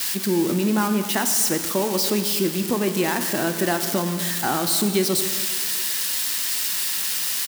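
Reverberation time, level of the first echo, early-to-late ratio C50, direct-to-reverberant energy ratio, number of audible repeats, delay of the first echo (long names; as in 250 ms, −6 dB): 1.8 s, −18.5 dB, 8.5 dB, 6.5 dB, 1, 251 ms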